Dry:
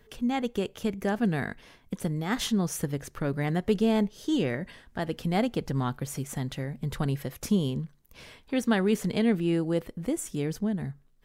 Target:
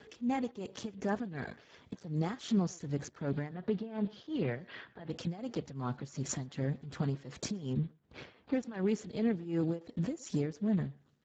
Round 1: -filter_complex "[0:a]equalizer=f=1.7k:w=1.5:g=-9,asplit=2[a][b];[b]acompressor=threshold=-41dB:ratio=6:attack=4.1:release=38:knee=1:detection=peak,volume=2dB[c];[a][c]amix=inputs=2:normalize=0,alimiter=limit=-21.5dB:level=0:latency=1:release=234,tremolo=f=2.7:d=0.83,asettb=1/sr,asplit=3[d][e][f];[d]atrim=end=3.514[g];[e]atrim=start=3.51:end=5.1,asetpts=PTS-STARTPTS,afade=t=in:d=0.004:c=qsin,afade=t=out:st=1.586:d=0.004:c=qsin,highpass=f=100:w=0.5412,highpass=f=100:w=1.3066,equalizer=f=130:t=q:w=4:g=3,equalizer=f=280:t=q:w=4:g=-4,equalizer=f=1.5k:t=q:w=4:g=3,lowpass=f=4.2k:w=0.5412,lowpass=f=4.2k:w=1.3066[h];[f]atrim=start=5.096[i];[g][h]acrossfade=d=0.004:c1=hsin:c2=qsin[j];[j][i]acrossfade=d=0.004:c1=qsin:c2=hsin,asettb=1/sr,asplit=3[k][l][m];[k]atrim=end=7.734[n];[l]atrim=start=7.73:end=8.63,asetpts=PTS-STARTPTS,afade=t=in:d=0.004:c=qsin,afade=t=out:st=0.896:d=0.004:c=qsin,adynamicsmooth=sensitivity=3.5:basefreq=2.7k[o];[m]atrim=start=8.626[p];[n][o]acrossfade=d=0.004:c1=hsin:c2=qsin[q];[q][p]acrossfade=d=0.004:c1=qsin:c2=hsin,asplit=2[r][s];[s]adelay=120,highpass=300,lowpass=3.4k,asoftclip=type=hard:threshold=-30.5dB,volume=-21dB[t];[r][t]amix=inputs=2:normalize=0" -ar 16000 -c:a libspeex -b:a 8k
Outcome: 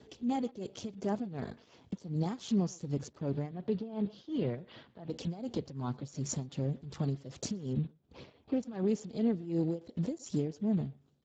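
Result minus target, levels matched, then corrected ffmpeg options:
2000 Hz band -9.0 dB
-filter_complex "[0:a]equalizer=f=1.7k:w=1.5:g=2.5,asplit=2[a][b];[b]acompressor=threshold=-41dB:ratio=6:attack=4.1:release=38:knee=1:detection=peak,volume=2dB[c];[a][c]amix=inputs=2:normalize=0,alimiter=limit=-21.5dB:level=0:latency=1:release=234,tremolo=f=2.7:d=0.83,asettb=1/sr,asplit=3[d][e][f];[d]atrim=end=3.514[g];[e]atrim=start=3.51:end=5.1,asetpts=PTS-STARTPTS,afade=t=in:d=0.004:c=qsin,afade=t=out:st=1.586:d=0.004:c=qsin,highpass=f=100:w=0.5412,highpass=f=100:w=1.3066,equalizer=f=130:t=q:w=4:g=3,equalizer=f=280:t=q:w=4:g=-4,equalizer=f=1.5k:t=q:w=4:g=3,lowpass=f=4.2k:w=0.5412,lowpass=f=4.2k:w=1.3066[h];[f]atrim=start=5.096[i];[g][h]acrossfade=d=0.004:c1=hsin:c2=qsin[j];[j][i]acrossfade=d=0.004:c1=qsin:c2=hsin,asettb=1/sr,asplit=3[k][l][m];[k]atrim=end=7.734[n];[l]atrim=start=7.73:end=8.63,asetpts=PTS-STARTPTS,afade=t=in:d=0.004:c=qsin,afade=t=out:st=0.896:d=0.004:c=qsin,adynamicsmooth=sensitivity=3.5:basefreq=2.7k[o];[m]atrim=start=8.626[p];[n][o]acrossfade=d=0.004:c1=hsin:c2=qsin[q];[q][p]acrossfade=d=0.004:c1=qsin:c2=hsin,asplit=2[r][s];[s]adelay=120,highpass=300,lowpass=3.4k,asoftclip=type=hard:threshold=-30.5dB,volume=-21dB[t];[r][t]amix=inputs=2:normalize=0" -ar 16000 -c:a libspeex -b:a 8k

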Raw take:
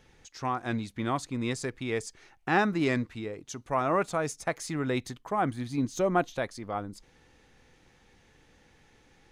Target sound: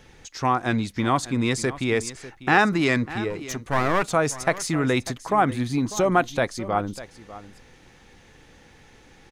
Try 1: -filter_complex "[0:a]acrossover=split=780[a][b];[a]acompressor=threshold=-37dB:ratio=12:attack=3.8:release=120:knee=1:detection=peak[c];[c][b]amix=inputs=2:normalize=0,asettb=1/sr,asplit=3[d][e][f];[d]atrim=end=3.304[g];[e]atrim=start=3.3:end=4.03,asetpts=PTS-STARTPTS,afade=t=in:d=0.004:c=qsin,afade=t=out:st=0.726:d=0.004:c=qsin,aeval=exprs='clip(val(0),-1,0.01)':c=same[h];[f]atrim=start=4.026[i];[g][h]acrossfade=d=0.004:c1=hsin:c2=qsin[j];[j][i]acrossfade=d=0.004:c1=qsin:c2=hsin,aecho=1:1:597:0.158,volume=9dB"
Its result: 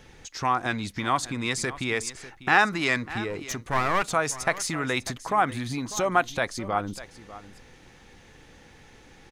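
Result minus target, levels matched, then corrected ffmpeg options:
compressor: peak gain reduction +8.5 dB
-filter_complex "[0:a]acrossover=split=780[a][b];[a]acompressor=threshold=-27.5dB:ratio=12:attack=3.8:release=120:knee=1:detection=peak[c];[c][b]amix=inputs=2:normalize=0,asettb=1/sr,asplit=3[d][e][f];[d]atrim=end=3.304[g];[e]atrim=start=3.3:end=4.03,asetpts=PTS-STARTPTS,afade=t=in:d=0.004:c=qsin,afade=t=out:st=0.726:d=0.004:c=qsin,aeval=exprs='clip(val(0),-1,0.01)':c=same[h];[f]atrim=start=4.026[i];[g][h]acrossfade=d=0.004:c1=hsin:c2=qsin[j];[j][i]acrossfade=d=0.004:c1=qsin:c2=hsin,aecho=1:1:597:0.158,volume=9dB"

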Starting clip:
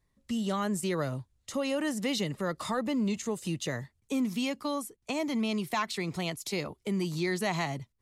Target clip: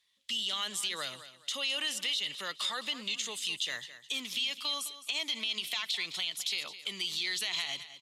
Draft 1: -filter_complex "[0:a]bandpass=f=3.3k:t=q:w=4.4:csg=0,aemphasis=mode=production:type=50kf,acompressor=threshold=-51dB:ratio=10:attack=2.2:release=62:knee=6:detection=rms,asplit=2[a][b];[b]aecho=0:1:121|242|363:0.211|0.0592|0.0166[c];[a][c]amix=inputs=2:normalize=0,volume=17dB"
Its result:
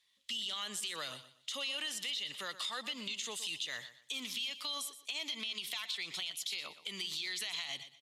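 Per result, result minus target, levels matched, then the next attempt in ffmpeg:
echo 90 ms early; compressor: peak gain reduction +6 dB
-filter_complex "[0:a]bandpass=f=3.3k:t=q:w=4.4:csg=0,aemphasis=mode=production:type=50kf,acompressor=threshold=-51dB:ratio=10:attack=2.2:release=62:knee=6:detection=rms,asplit=2[a][b];[b]aecho=0:1:211|422|633:0.211|0.0592|0.0166[c];[a][c]amix=inputs=2:normalize=0,volume=17dB"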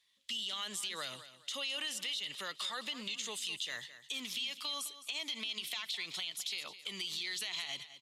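compressor: peak gain reduction +6 dB
-filter_complex "[0:a]bandpass=f=3.3k:t=q:w=4.4:csg=0,aemphasis=mode=production:type=50kf,acompressor=threshold=-44.5dB:ratio=10:attack=2.2:release=62:knee=6:detection=rms,asplit=2[a][b];[b]aecho=0:1:211|422|633:0.211|0.0592|0.0166[c];[a][c]amix=inputs=2:normalize=0,volume=17dB"

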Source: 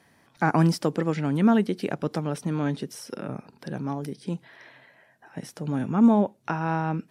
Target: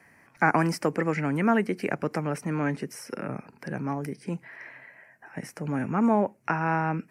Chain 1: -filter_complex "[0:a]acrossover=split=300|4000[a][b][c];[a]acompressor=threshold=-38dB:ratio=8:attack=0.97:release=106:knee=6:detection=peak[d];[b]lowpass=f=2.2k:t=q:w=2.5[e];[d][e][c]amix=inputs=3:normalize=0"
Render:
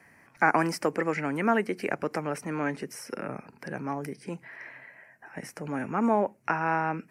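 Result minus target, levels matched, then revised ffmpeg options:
compressor: peak gain reduction +10 dB
-filter_complex "[0:a]acrossover=split=300|4000[a][b][c];[a]acompressor=threshold=-26.5dB:ratio=8:attack=0.97:release=106:knee=6:detection=peak[d];[b]lowpass=f=2.2k:t=q:w=2.5[e];[d][e][c]amix=inputs=3:normalize=0"

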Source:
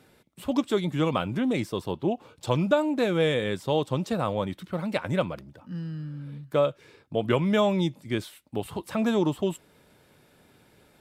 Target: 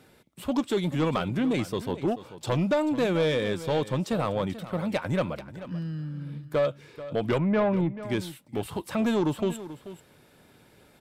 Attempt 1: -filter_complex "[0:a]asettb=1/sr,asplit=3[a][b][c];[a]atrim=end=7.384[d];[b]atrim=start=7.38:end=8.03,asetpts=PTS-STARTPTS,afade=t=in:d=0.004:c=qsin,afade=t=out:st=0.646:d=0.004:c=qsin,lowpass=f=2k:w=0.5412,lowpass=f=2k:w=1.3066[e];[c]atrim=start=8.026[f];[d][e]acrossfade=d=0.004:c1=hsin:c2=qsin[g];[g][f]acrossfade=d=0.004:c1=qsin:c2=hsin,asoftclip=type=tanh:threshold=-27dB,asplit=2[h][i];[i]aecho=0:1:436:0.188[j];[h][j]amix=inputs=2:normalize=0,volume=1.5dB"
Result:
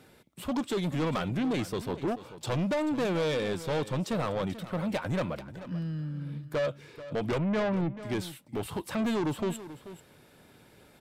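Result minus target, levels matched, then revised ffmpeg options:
soft clip: distortion +6 dB
-filter_complex "[0:a]asettb=1/sr,asplit=3[a][b][c];[a]atrim=end=7.384[d];[b]atrim=start=7.38:end=8.03,asetpts=PTS-STARTPTS,afade=t=in:d=0.004:c=qsin,afade=t=out:st=0.646:d=0.004:c=qsin,lowpass=f=2k:w=0.5412,lowpass=f=2k:w=1.3066[e];[c]atrim=start=8.026[f];[d][e]acrossfade=d=0.004:c1=hsin:c2=qsin[g];[g][f]acrossfade=d=0.004:c1=qsin:c2=hsin,asoftclip=type=tanh:threshold=-19.5dB,asplit=2[h][i];[i]aecho=0:1:436:0.188[j];[h][j]amix=inputs=2:normalize=0,volume=1.5dB"

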